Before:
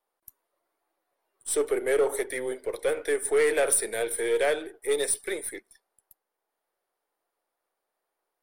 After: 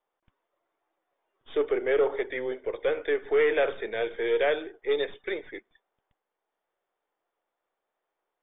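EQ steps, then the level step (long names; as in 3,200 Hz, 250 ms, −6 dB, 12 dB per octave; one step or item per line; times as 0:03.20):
linear-phase brick-wall low-pass 3,700 Hz
0.0 dB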